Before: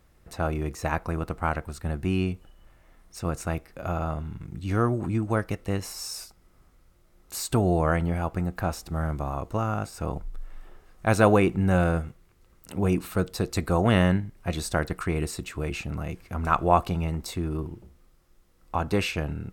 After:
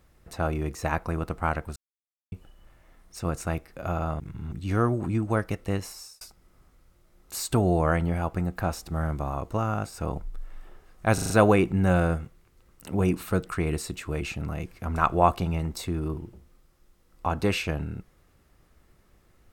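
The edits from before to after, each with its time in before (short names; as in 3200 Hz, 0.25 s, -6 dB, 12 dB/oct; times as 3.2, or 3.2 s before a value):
1.76–2.32 mute
4.2–4.52 reverse
5.76–6.21 fade out
11.14 stutter 0.04 s, 5 plays
13.3–14.95 cut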